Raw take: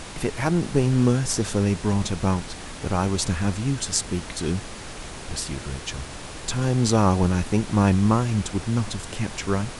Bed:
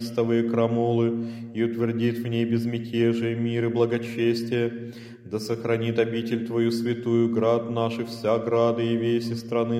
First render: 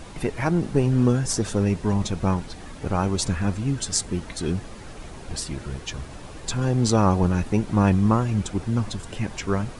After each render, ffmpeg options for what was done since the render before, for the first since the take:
-af "afftdn=nr=9:nf=-37"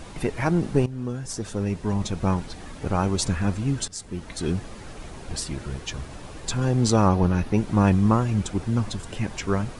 -filter_complex "[0:a]asettb=1/sr,asplit=3[s0][s1][s2];[s0]atrim=end=7.084[s3];[s1]atrim=start=7.08:end=7.57,asetpts=PTS-STARTPTS,afade=t=in:d=0.004:c=qsin,afade=t=out:st=0.486:d=0.004:c=qsin,equalizer=f=7800:w=2.6:g=-10.5[s4];[s2]atrim=start=7.566[s5];[s3][s4]acrossfade=d=0.004:c1=hsin:c2=qsin[s6];[s6][s5]acrossfade=d=0.004:c1=qsin:c2=hsin,asplit=3[s7][s8][s9];[s7]atrim=end=0.86,asetpts=PTS-STARTPTS,afade=t=out:st=0.856:d=0.004:c=hsin:silence=0.16788[s10];[s8]atrim=start=0.86:end=3.88,asetpts=PTS-STARTPTS,afade=t=in:d=1.54:silence=0.16788,afade=t=out:st=3.016:d=0.004:c=hsin:silence=0.11885[s11];[s9]atrim=start=3.88,asetpts=PTS-STARTPTS,afade=t=in:d=0.57:silence=0.11885[s12];[s10][s11][s12]concat=n=3:v=0:a=1"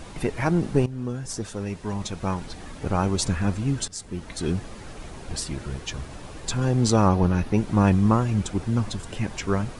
-filter_complex "[0:a]asettb=1/sr,asplit=3[s0][s1][s2];[s0]atrim=end=1.464[s3];[s1]atrim=start=1.46:end=2.41,asetpts=PTS-STARTPTS,afade=t=in:d=0.004:c=qsin,afade=t=out:st=0.946:d=0.004:c=qsin,lowshelf=f=500:g=-5.5[s4];[s2]atrim=start=2.406[s5];[s3][s4]acrossfade=d=0.004:c1=hsin:c2=qsin[s6];[s6][s5]acrossfade=d=0.004:c1=qsin:c2=hsin"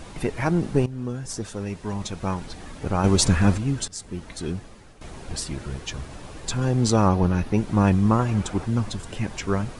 -filter_complex "[0:a]asettb=1/sr,asplit=3[s0][s1][s2];[s0]atrim=end=3.044[s3];[s1]atrim=start=3.04:end=3.58,asetpts=PTS-STARTPTS,afade=t=in:d=0.004:c=qsin,afade=t=out:st=0.536:d=0.004:c=qsin,acontrast=57[s4];[s2]atrim=start=3.576[s5];[s3][s4]acrossfade=d=0.004:c1=hsin:c2=qsin[s6];[s6][s5]acrossfade=d=0.004:c1=qsin:c2=hsin,asettb=1/sr,asplit=3[s7][s8][s9];[s7]atrim=end=8.194[s10];[s8]atrim=start=8.19:end=8.66,asetpts=PTS-STARTPTS,afade=t=in:d=0.004:c=qsin,afade=t=out:st=0.466:d=0.004:c=qsin,equalizer=f=1000:w=0.67:g=6[s11];[s9]atrim=start=8.656[s12];[s10][s11]acrossfade=d=0.004:c1=hsin:c2=qsin[s13];[s13][s12]acrossfade=d=0.004:c1=qsin:c2=hsin,asplit=2[s14][s15];[s14]atrim=end=5.01,asetpts=PTS-STARTPTS,afade=t=out:st=4.1:d=0.91:silence=0.223872[s16];[s15]atrim=start=5.01,asetpts=PTS-STARTPTS,afade=t=in:d=0.004:c=hsin:silence=0.223872[s17];[s16][s17]concat=n=2:v=0:a=1"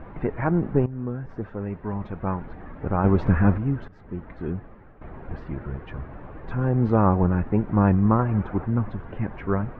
-af "lowpass=f=1800:w=0.5412,lowpass=f=1800:w=1.3066"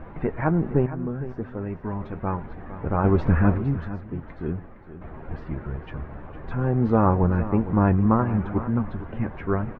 -filter_complex "[0:a]asplit=2[s0][s1];[s1]adelay=13,volume=0.266[s2];[s0][s2]amix=inputs=2:normalize=0,aecho=1:1:460:0.211"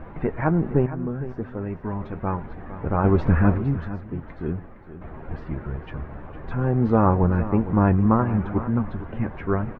-af "volume=1.12"

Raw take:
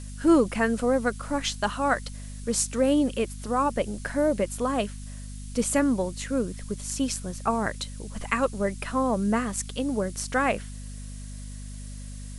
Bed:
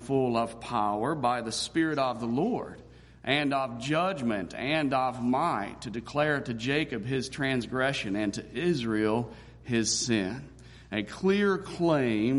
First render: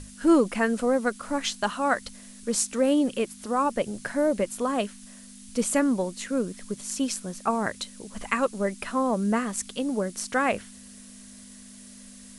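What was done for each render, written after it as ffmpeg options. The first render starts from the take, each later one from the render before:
-af "bandreject=f=50:t=h:w=6,bandreject=f=100:t=h:w=6,bandreject=f=150:t=h:w=6"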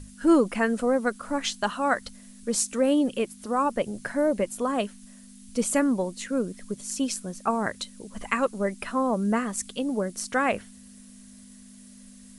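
-af "afftdn=nr=6:nf=-47"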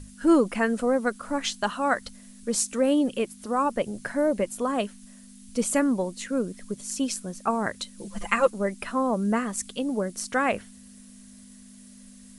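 -filter_complex "[0:a]asettb=1/sr,asplit=3[s0][s1][s2];[s0]atrim=end=7.984[s3];[s1]atrim=start=7.98:end=8.5,asetpts=PTS-STARTPTS,afade=t=in:d=0.004:c=qsin,afade=t=out:st=0.516:d=0.004:c=qsin,aecho=1:1:5.8:1,atrim=end_sample=22932[s4];[s2]atrim=start=8.496[s5];[s3][s4]acrossfade=d=0.004:c1=hsin:c2=qsin[s6];[s6][s5]acrossfade=d=0.004:c1=qsin:c2=hsin"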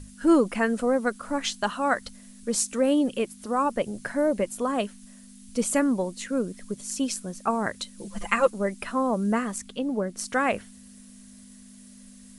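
-filter_complex "[0:a]asettb=1/sr,asplit=3[s0][s1][s2];[s0]atrim=end=9.584[s3];[s1]atrim=start=9.58:end=10.19,asetpts=PTS-STARTPTS,afade=t=in:d=0.004:c=qsin,afade=t=out:st=0.606:d=0.004:c=qsin,highshelf=f=5200:g=-11.5[s4];[s2]atrim=start=10.186[s5];[s3][s4]acrossfade=d=0.004:c1=hsin:c2=qsin[s6];[s6][s5]acrossfade=d=0.004:c1=qsin:c2=hsin"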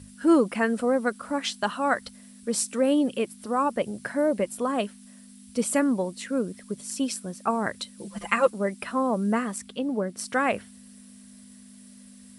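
-af "highpass=74,equalizer=f=6600:w=6.5:g=-7.5"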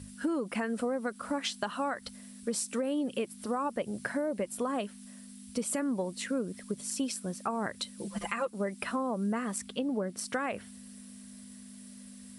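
-af "alimiter=limit=0.133:level=0:latency=1:release=196,acompressor=threshold=0.0355:ratio=4"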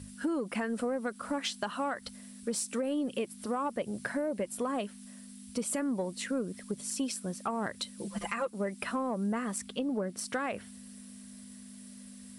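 -af "asoftclip=type=tanh:threshold=0.1"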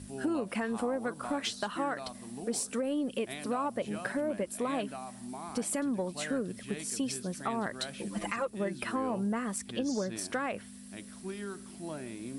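-filter_complex "[1:a]volume=0.158[s0];[0:a][s0]amix=inputs=2:normalize=0"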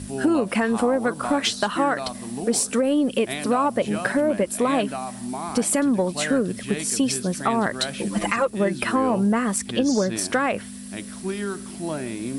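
-af "volume=3.76"

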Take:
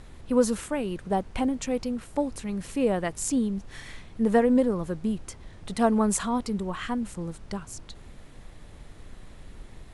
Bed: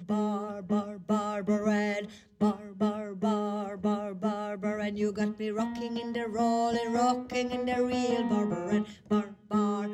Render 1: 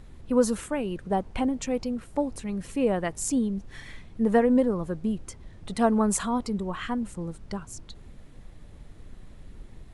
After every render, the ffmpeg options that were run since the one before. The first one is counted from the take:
-af "afftdn=nr=6:nf=-48"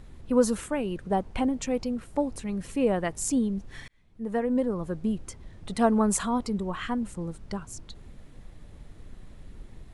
-filter_complex "[0:a]asplit=2[s0][s1];[s0]atrim=end=3.88,asetpts=PTS-STARTPTS,afade=t=out:st=3.876:d=0.004:c=hsin[s2];[s1]atrim=start=3.88,asetpts=PTS-STARTPTS,afade=t=in:d=1.14[s3];[s2][s3]concat=n=2:v=0:a=1"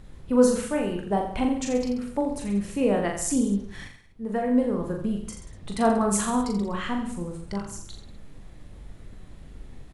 -filter_complex "[0:a]asplit=2[s0][s1];[s1]adelay=20,volume=0.224[s2];[s0][s2]amix=inputs=2:normalize=0,asplit=2[s3][s4];[s4]aecho=0:1:40|84|132.4|185.6|244.2:0.631|0.398|0.251|0.158|0.1[s5];[s3][s5]amix=inputs=2:normalize=0"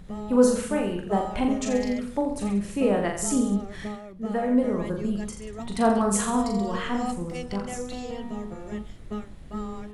-filter_complex "[1:a]volume=0.473[s0];[0:a][s0]amix=inputs=2:normalize=0"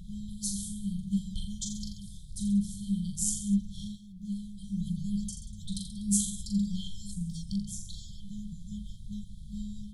-af "afftfilt=real='re*(1-between(b*sr/4096,210,3100))':imag='im*(1-between(b*sr/4096,210,3100))':win_size=4096:overlap=0.75,adynamicequalizer=threshold=0.00316:dfrequency=4800:dqfactor=0.89:tfrequency=4800:tqfactor=0.89:attack=5:release=100:ratio=0.375:range=2.5:mode=cutabove:tftype=bell"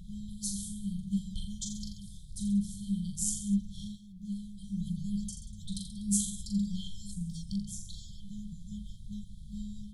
-af "volume=0.794"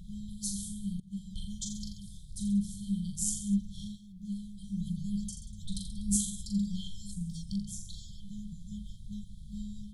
-filter_complex "[0:a]asettb=1/sr,asplit=3[s0][s1][s2];[s0]atrim=end=5.514[s3];[s1]atrim=start=5.51:end=6.16,asetpts=PTS-STARTPTS,afade=t=in:d=0.004:c=qsin,afade=t=out:st=0.646:d=0.004:c=qsin,asubboost=boost=10:cutoff=130[s4];[s2]atrim=start=6.156[s5];[s3][s4]acrossfade=d=0.004:c1=hsin:c2=qsin[s6];[s6][s5]acrossfade=d=0.004:c1=qsin:c2=hsin,asplit=2[s7][s8];[s7]atrim=end=1,asetpts=PTS-STARTPTS,afade=t=out:st=0.996:d=0.004:c=hsin:silence=0.125893[s9];[s8]atrim=start=1,asetpts=PTS-STARTPTS,afade=t=in:d=0.5:silence=0.125893[s10];[s9][s10]concat=n=2:v=0:a=1"

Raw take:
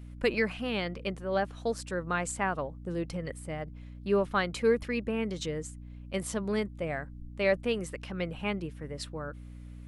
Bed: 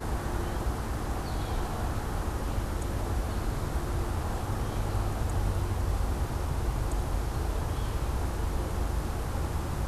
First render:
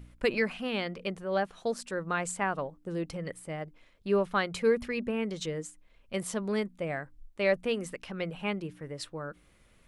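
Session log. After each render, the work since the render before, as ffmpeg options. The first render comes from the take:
-af "bandreject=f=60:t=h:w=4,bandreject=f=120:t=h:w=4,bandreject=f=180:t=h:w=4,bandreject=f=240:t=h:w=4,bandreject=f=300:t=h:w=4"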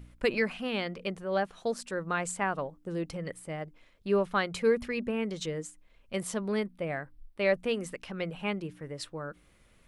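-filter_complex "[0:a]asettb=1/sr,asplit=3[s0][s1][s2];[s0]atrim=end=6.424[s3];[s1]atrim=start=6.42:end=7.55,asetpts=PTS-STARTPTS,afade=t=in:d=0.004:c=qsin,afade=t=out:st=1.126:d=0.004:c=qsin,equalizer=f=6900:t=o:w=0.28:g=-15[s4];[s2]atrim=start=7.546[s5];[s3][s4]acrossfade=d=0.004:c1=hsin:c2=qsin[s6];[s6][s5]acrossfade=d=0.004:c1=qsin:c2=hsin"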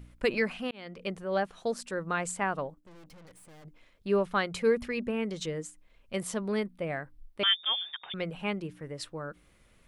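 -filter_complex "[0:a]asettb=1/sr,asplit=3[s0][s1][s2];[s0]atrim=end=2.744[s3];[s1]atrim=start=2.74:end=3.65,asetpts=PTS-STARTPTS,afade=t=in:d=0.004:c=qsin,afade=t=out:st=0.906:d=0.004:c=qsin,aeval=exprs='(tanh(398*val(0)+0.75)-tanh(0.75))/398':c=same[s4];[s2]atrim=start=3.646[s5];[s3][s4]acrossfade=d=0.004:c1=hsin:c2=qsin[s6];[s6][s5]acrossfade=d=0.004:c1=qsin:c2=hsin,asettb=1/sr,asplit=3[s7][s8][s9];[s7]atrim=end=7.434[s10];[s8]atrim=start=7.43:end=8.14,asetpts=PTS-STARTPTS,afade=t=in:d=0.004:c=qsin,afade=t=out:st=0.706:d=0.004:c=qsin,lowpass=f=3100:t=q:w=0.5098,lowpass=f=3100:t=q:w=0.6013,lowpass=f=3100:t=q:w=0.9,lowpass=f=3100:t=q:w=2.563,afreqshift=-3700[s11];[s9]atrim=start=8.136[s12];[s10][s11]acrossfade=d=0.004:c1=hsin:c2=qsin[s13];[s13][s12]acrossfade=d=0.004:c1=qsin:c2=hsin,asplit=2[s14][s15];[s14]atrim=end=0.71,asetpts=PTS-STARTPTS,afade=t=out:st=0.706:d=0.004:c=hsin[s16];[s15]atrim=start=0.71,asetpts=PTS-STARTPTS,afade=t=in:d=0.4[s17];[s16][s17]concat=n=2:v=0:a=1"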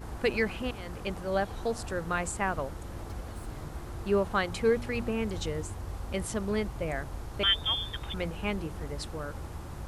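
-filter_complex "[1:a]volume=0.355[s0];[0:a][s0]amix=inputs=2:normalize=0"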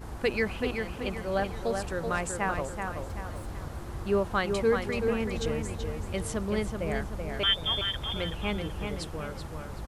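-filter_complex "[0:a]asplit=2[s0][s1];[s1]adelay=380,lowpass=f=4300:p=1,volume=0.562,asplit=2[s2][s3];[s3]adelay=380,lowpass=f=4300:p=1,volume=0.44,asplit=2[s4][s5];[s5]adelay=380,lowpass=f=4300:p=1,volume=0.44,asplit=2[s6][s7];[s7]adelay=380,lowpass=f=4300:p=1,volume=0.44,asplit=2[s8][s9];[s9]adelay=380,lowpass=f=4300:p=1,volume=0.44[s10];[s0][s2][s4][s6][s8][s10]amix=inputs=6:normalize=0"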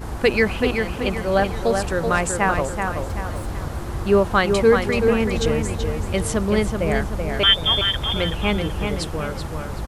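-af "volume=3.16"

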